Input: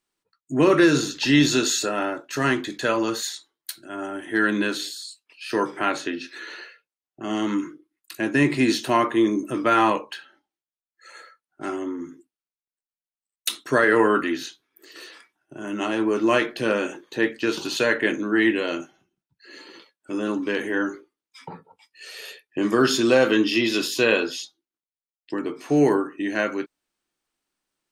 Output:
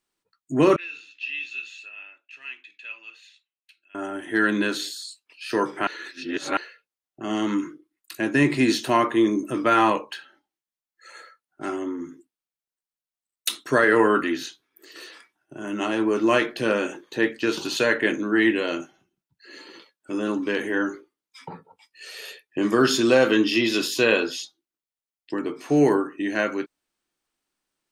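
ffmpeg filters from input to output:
ffmpeg -i in.wav -filter_complex "[0:a]asettb=1/sr,asplit=3[link_01][link_02][link_03];[link_01]atrim=end=0.764[link_04];[link_02]atrim=start=0.76:end=3.95,asetpts=PTS-STARTPTS,afade=type=in:duration=0.004:curve=qsin,afade=type=out:start_time=3.186:duration=0.004:curve=qsin,bandpass=frequency=2600:width_type=q:width=13[link_05];[link_03]atrim=start=3.946[link_06];[link_04][link_05]acrossfade=duration=0.004:curve1=hsin:curve2=qsin[link_07];[link_07][link_06]acrossfade=duration=0.004:curve1=qsin:curve2=hsin,asplit=3[link_08][link_09][link_10];[link_08]atrim=end=5.872[link_11];[link_09]atrim=start=5.868:end=6.572,asetpts=PTS-STARTPTS,areverse[link_12];[link_10]atrim=start=6.568[link_13];[link_11][link_12]acrossfade=duration=0.004:curve1=hsin:curve2=hsin[link_14];[link_14][link_13]acrossfade=duration=0.004:curve1=hsin:curve2=hsin" out.wav

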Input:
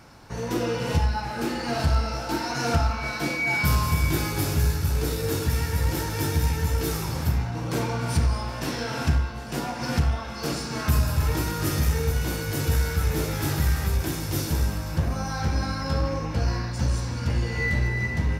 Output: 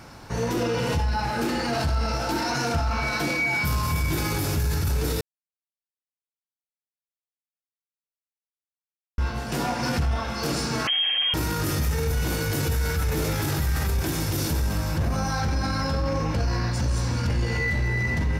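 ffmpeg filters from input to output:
ffmpeg -i in.wav -filter_complex "[0:a]asettb=1/sr,asplit=3[link_01][link_02][link_03];[link_01]atrim=end=10.874[link_04];[link_02]atrim=start=10.87:end=11.34,asetpts=PTS-STARTPTS,afade=type=in:duration=0.004:curve=qsin,afade=type=out:start_time=0.466:duration=0.004:curve=qsin,lowpass=frequency=2800:width_type=q:width=0.5098,lowpass=frequency=2800:width_type=q:width=0.6013,lowpass=frequency=2800:width_type=q:width=0.9,lowpass=frequency=2800:width_type=q:width=2.563,afreqshift=-3300[link_05];[link_03]atrim=start=11.336[link_06];[link_04][link_05]acrossfade=duration=0.004:curve1=hsin:curve2=qsin[link_07];[link_07][link_06]acrossfade=duration=0.004:curve1=qsin:curve2=hsin,asplit=3[link_08][link_09][link_10];[link_08]atrim=end=5.21,asetpts=PTS-STARTPTS,afade=type=out:start_time=5.206:duration=0.004:curve=hsin[link_11];[link_09]atrim=start=5.21:end=9.18,asetpts=PTS-STARTPTS,volume=0[link_12];[link_10]atrim=start=9.18,asetpts=PTS-STARTPTS,afade=type=in:duration=0.004:curve=hsin[link_13];[link_11][link_12][link_13]concat=n=3:v=0:a=1,alimiter=limit=-22.5dB:level=0:latency=1:release=15,volume=5dB" out.wav

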